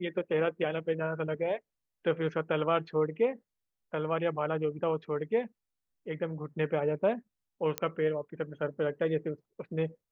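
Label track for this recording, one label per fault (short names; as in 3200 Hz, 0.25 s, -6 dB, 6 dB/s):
7.780000	7.780000	pop -13 dBFS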